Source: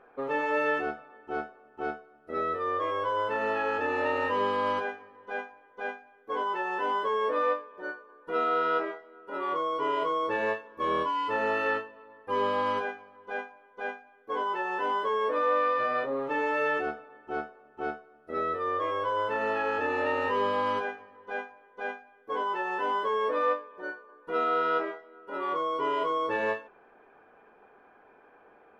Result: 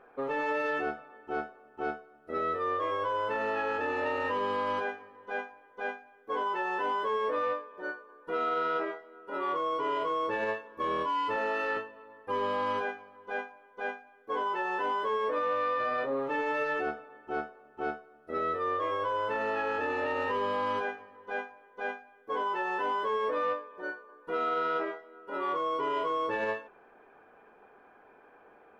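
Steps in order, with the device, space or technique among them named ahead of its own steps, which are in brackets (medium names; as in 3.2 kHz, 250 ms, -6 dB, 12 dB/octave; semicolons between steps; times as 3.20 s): 11.36–11.77 s: high-pass 240 Hz 12 dB/octave; soft clipper into limiter (saturation -17.5 dBFS, distortion -26 dB; peak limiter -23.5 dBFS, peak gain reduction 4.5 dB)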